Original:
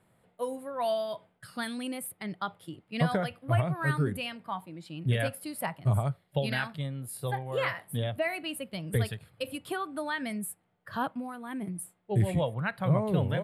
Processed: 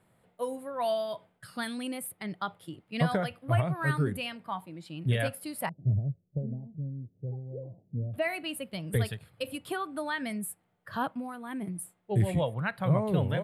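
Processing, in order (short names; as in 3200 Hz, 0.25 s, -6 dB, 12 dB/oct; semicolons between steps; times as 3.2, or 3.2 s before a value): 5.69–8.14 Gaussian blur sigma 22 samples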